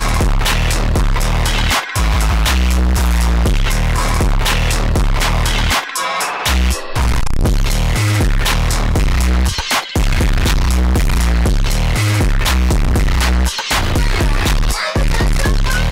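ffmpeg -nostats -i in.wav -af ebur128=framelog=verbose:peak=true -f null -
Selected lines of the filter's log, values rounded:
Integrated loudness:
  I:         -15.8 LUFS
  Threshold: -25.8 LUFS
Loudness range:
  LRA:         1.0 LU
  Threshold: -35.7 LUFS
  LRA low:   -16.3 LUFS
  LRA high:  -15.3 LUFS
True peak:
  Peak:       -8.7 dBFS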